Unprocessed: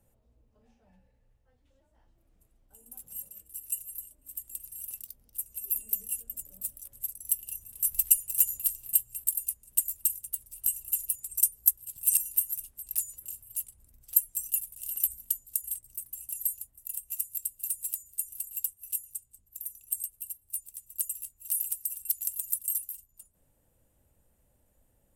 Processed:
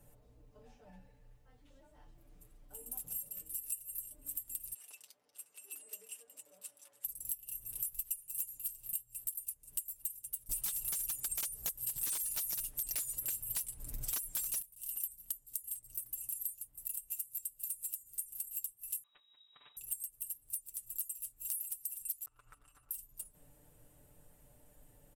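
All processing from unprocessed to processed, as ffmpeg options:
-filter_complex "[0:a]asettb=1/sr,asplit=3[s0][s1][s2];[s0]atrim=end=4.744[s3];[s1]atrim=start=4.74:end=7.05,asetpts=PTS-STARTPTS,afade=t=in:d=0.004:c=qsin,afade=t=out:st=2.306:d=0.004:c=qsin,highpass=670,lowpass=6600,highshelf=f=3000:g=-10.5[s4];[s2]atrim=start=7.046[s5];[s3][s4]acrossfade=d=0.004:c1=hsin:c2=qsin[s6];[s6][s5]acrossfade=d=0.004:c1=qsin:c2=hsin,asettb=1/sr,asplit=3[s7][s8][s9];[s7]atrim=end=10.494[s10];[s8]atrim=start=10.49:end=14.62,asetpts=PTS-STARTPTS,afade=t=in:d=0.004:c=qsin,afade=t=out:st=4.126:d=0.004:c=qsin,acompressor=threshold=0.0316:ratio=3:attack=3.2:release=140:knee=1:detection=peak,aeval=exprs='0.188*sin(PI/2*7.94*val(0)/0.188)':c=same[s11];[s9]atrim=start=14.616[s12];[s10][s11]acrossfade=d=0.004:c1=hsin:c2=qsin[s13];[s13][s12]acrossfade=d=0.004:c1=qsin:c2=hsin,asettb=1/sr,asplit=3[s14][s15][s16];[s14]atrim=end=19.034[s17];[s15]atrim=start=19.03:end=19.77,asetpts=PTS-STARTPTS,afade=t=in:d=0.004:c=qsin,afade=t=out:st=0.736:d=0.004:c=qsin,highpass=53,acrusher=bits=6:mode=log:mix=0:aa=0.000001,lowpass=f=3300:t=q:w=0.5098,lowpass=f=3300:t=q:w=0.6013,lowpass=f=3300:t=q:w=0.9,lowpass=f=3300:t=q:w=2.563,afreqshift=-3900[s18];[s16]atrim=start=19.766[s19];[s17][s18]acrossfade=d=0.004:c1=hsin:c2=qsin[s20];[s20][s19]acrossfade=d=0.004:c1=qsin:c2=hsin,asettb=1/sr,asplit=3[s21][s22][s23];[s21]atrim=end=22.254[s24];[s22]atrim=start=22.25:end=22.91,asetpts=PTS-STARTPTS,afade=t=in:d=0.004:c=qsin,afade=t=out:st=0.656:d=0.004:c=qsin,equalizer=f=170:w=2.1:g=-8,acompressor=threshold=0.0178:ratio=2:attack=3.2:release=140:knee=1:detection=peak,lowpass=f=1300:t=q:w=6.5[s25];[s23]atrim=start=22.906[s26];[s24][s25]acrossfade=d=0.004:c1=hsin:c2=qsin[s27];[s27][s26]acrossfade=d=0.004:c1=qsin:c2=hsin,aecho=1:1:6.8:0.71,acompressor=threshold=0.00708:ratio=6,volume=1.78"

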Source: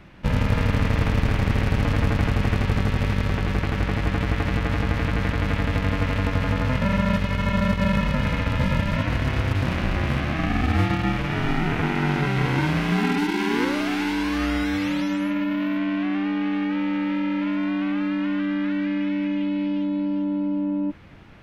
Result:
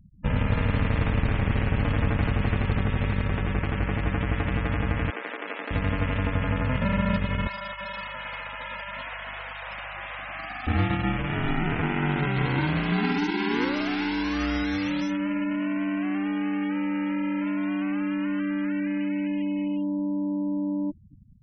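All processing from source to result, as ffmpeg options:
-filter_complex "[0:a]asettb=1/sr,asplit=3[s0][s1][s2];[s0]atrim=end=5.104[s3];[s1]atrim=start=5.1:end=5.71,asetpts=PTS-STARTPTS,afade=t=in:d=0.004:c=qsin,afade=t=out:st=0.606:d=0.004:c=qsin,aeval=exprs='if(lt(val(0),0),0.447*val(0),val(0))':c=same,highpass=f=330:w=0.5412,highpass=f=330:w=1.3066,highshelf=f=5500:g=6[s4];[s2]atrim=start=5.706[s5];[s3][s4]acrossfade=d=0.004:c1=hsin:c2=qsin[s6];[s6][s5]acrossfade=d=0.004:c1=qsin:c2=hsin,asettb=1/sr,asplit=3[s7][s8][s9];[s7]atrim=end=7.474[s10];[s8]atrim=start=7.47:end=10.67,asetpts=PTS-STARTPTS,afade=t=in:d=0.004:c=qsin,afade=t=out:st=3.196:d=0.004:c=qsin,highpass=f=650:w=0.5412,highpass=f=650:w=1.3066,asoftclip=type=hard:threshold=0.0422,aeval=exprs='val(0)+0.00562*(sin(2*PI*50*n/s)+sin(2*PI*2*50*n/s)/2+sin(2*PI*3*50*n/s)/3+sin(2*PI*4*50*n/s)/4+sin(2*PI*5*50*n/s)/5)':c=same[s11];[s9]atrim=start=10.666[s12];[s10][s11]acrossfade=d=0.004:c1=hsin:c2=qsin[s13];[s13][s12]acrossfade=d=0.004:c1=qsin:c2=hsin,afftfilt=real='re*gte(hypot(re,im),0.0224)':imag='im*gte(hypot(re,im),0.0224)':win_size=1024:overlap=0.75,equalizer=f=7700:w=1.1:g=11.5,volume=0.708"

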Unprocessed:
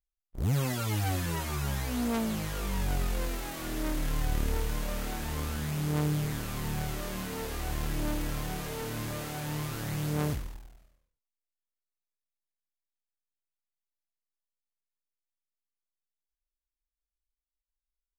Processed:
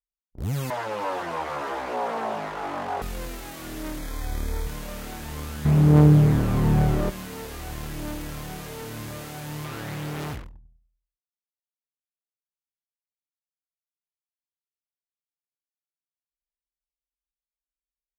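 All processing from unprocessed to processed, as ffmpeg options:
-filter_complex "[0:a]asettb=1/sr,asplit=3[s0][s1][s2];[s0]atrim=end=0.704[s3];[s1]atrim=start=0.7:end=3.02,asetpts=PTS-STARTPTS,afade=t=in:d=0.004:c=qsin,afade=t=out:st=2.316:d=0.004:c=qsin,aeval=exprs='0.112*sin(PI/2*5.01*val(0)/0.112)':c=same,bandpass=f=780:t=q:w=1.5[s4];[s2]atrim=start=3.016[s5];[s3][s4]acrossfade=d=0.004:c1=hsin:c2=qsin[s6];[s6][s5]acrossfade=d=0.004:c1=qsin:c2=hsin,asettb=1/sr,asplit=3[s7][s8][s9];[s7]atrim=end=3.984[s10];[s8]atrim=start=3.98:end=4.67,asetpts=PTS-STARTPTS,afade=t=in:d=0.004:c=qsin,afade=t=out:st=0.686:d=0.004:c=qsin,bandreject=f=50:t=h:w=6,bandreject=f=100:t=h:w=6,bandreject=f=150:t=h:w=6,asubboost=boost=9.5:cutoff=65,asuperstop=centerf=2800:order=12:qfactor=6.1[s11];[s9]atrim=start=4.666[s12];[s10][s11]acrossfade=d=0.004:c1=hsin:c2=qsin[s13];[s13][s12]acrossfade=d=0.004:c1=qsin:c2=hsin,asettb=1/sr,asplit=3[s14][s15][s16];[s14]atrim=end=5.654[s17];[s15]atrim=start=5.65:end=7.1,asetpts=PTS-STARTPTS,afade=t=in:d=0.004:c=qsin,afade=t=out:st=1.446:d=0.004:c=qsin,acontrast=76,tiltshelf=f=1400:g=8.5[s18];[s16]atrim=start=7.096[s19];[s17][s18]acrossfade=d=0.004:c1=hsin:c2=qsin[s20];[s20][s19]acrossfade=d=0.004:c1=qsin:c2=hsin,asettb=1/sr,asplit=3[s21][s22][s23];[s21]atrim=end=9.644[s24];[s22]atrim=start=9.64:end=10.45,asetpts=PTS-STARTPTS,afade=t=in:d=0.004:c=qsin,afade=t=out:st=0.806:d=0.004:c=qsin,bass=f=250:g=-6,treble=f=4000:g=-8,acontrast=30,aeval=exprs='0.0501*(abs(mod(val(0)/0.0501+3,4)-2)-1)':c=same[s25];[s23]atrim=start=10.446[s26];[s24][s25]acrossfade=d=0.004:c1=hsin:c2=qsin[s27];[s27][s26]acrossfade=d=0.004:c1=qsin:c2=hsin,highpass=43,anlmdn=0.0251"

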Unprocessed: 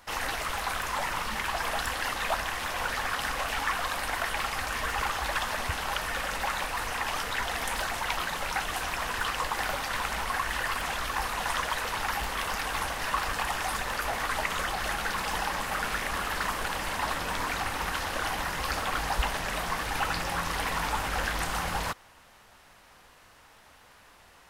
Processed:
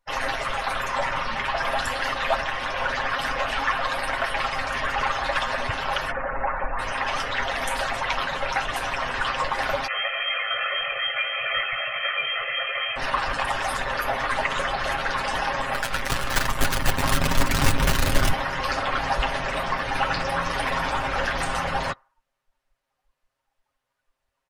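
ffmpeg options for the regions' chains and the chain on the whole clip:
-filter_complex "[0:a]asettb=1/sr,asplit=3[s0][s1][s2];[s0]atrim=end=6.114[s3];[s1]atrim=start=6.11:end=6.79,asetpts=PTS-STARTPTS,afade=t=in:d=0.004:c=qsin,afade=t=out:st=0.676:d=0.004:c=qsin,lowpass=1600,asubboost=boost=10:cutoff=58[s4];[s2]atrim=start=6.786[s5];[s3][s4]acrossfade=d=0.004:c1=hsin:c2=qsin[s6];[s6][s5]acrossfade=d=0.004:c1=qsin:c2=hsin,asettb=1/sr,asplit=3[s7][s8][s9];[s7]atrim=end=9.874[s10];[s8]atrim=start=9.87:end=12.96,asetpts=PTS-STARTPTS,afade=t=in:d=0.004:c=qsin,afade=t=out:st=3.086:d=0.004:c=qsin,flanger=delay=17.5:depth=2.3:speed=1.5,lowpass=f=2700:t=q:w=0.5098,lowpass=f=2700:t=q:w=0.6013,lowpass=f=2700:t=q:w=0.9,lowpass=f=2700:t=q:w=2.563,afreqshift=-3200,aecho=1:1:1.6:0.81,atrim=end_sample=136269[s11];[s9]atrim=start=12.956[s12];[s10][s11]acrossfade=d=0.004:c1=hsin:c2=qsin[s13];[s13][s12]acrossfade=d=0.004:c1=qsin:c2=hsin,asettb=1/sr,asplit=3[s14][s15][s16];[s14]atrim=end=15.744[s17];[s15]atrim=start=15.74:end=18.33,asetpts=PTS-STARTPTS,afade=t=in:d=0.004:c=qsin,afade=t=out:st=2.586:d=0.004:c=qsin,asubboost=boost=10:cutoff=230,acrusher=bits=5:dc=4:mix=0:aa=0.000001[s18];[s16]atrim=start=18.326[s19];[s17][s18]acrossfade=d=0.004:c1=hsin:c2=qsin[s20];[s20][s19]acrossfade=d=0.004:c1=qsin:c2=hsin,afftdn=nr=31:nf=-42,equalizer=f=580:w=7.6:g=8,aecho=1:1:7.5:0.65,volume=1.5"

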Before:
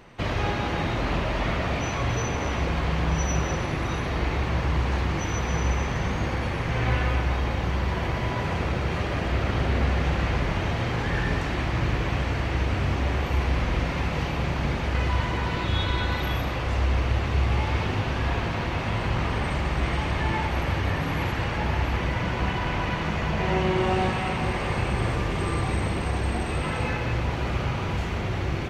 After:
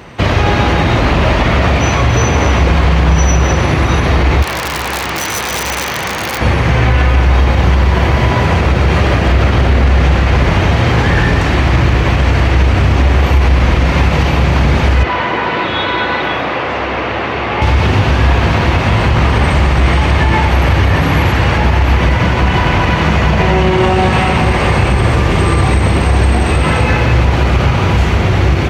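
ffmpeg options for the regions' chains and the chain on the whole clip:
-filter_complex "[0:a]asettb=1/sr,asplit=3[s0][s1][s2];[s0]atrim=end=4.424[s3];[s1]atrim=start=4.42:end=6.41,asetpts=PTS-STARTPTS,afade=t=in:d=0.004:c=qsin,afade=t=out:st=1.986:d=0.004:c=qsin,highpass=f=780:p=1,aeval=exprs='(mod(18.8*val(0)+1,2)-1)/18.8':c=same[s4];[s2]atrim=start=6.406[s5];[s3][s4]acrossfade=d=0.004:c1=hsin:c2=qsin[s6];[s6][s5]acrossfade=d=0.004:c1=qsin:c2=hsin,asettb=1/sr,asplit=3[s7][s8][s9];[s7]atrim=end=15.034[s10];[s8]atrim=start=15.03:end=17.62,asetpts=PTS-STARTPTS,afade=t=in:d=0.004:c=qsin,afade=t=out:st=2.586:d=0.004:c=qsin,highpass=170,lowpass=6400,bass=f=250:g=-9,treble=f=4000:g=-11[s11];[s9]atrim=start=17.616[s12];[s10][s11]acrossfade=d=0.004:c1=hsin:c2=qsin[s13];[s13][s12]acrossfade=d=0.004:c1=qsin:c2=hsin,highpass=f=49:w=0.5412,highpass=f=49:w=1.3066,equalizer=f=66:w=1.5:g=4.5,alimiter=level_in=6.68:limit=0.891:release=50:level=0:latency=1,volume=0.891"

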